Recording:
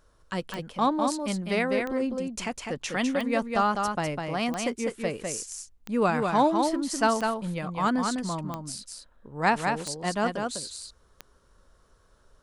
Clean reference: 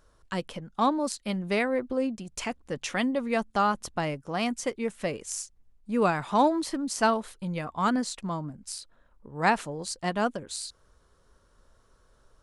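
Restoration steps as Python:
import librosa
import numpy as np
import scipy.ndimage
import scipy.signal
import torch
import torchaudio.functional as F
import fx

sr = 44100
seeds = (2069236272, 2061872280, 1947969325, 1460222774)

y = fx.fix_declick_ar(x, sr, threshold=10.0)
y = fx.fix_echo_inverse(y, sr, delay_ms=202, level_db=-4.5)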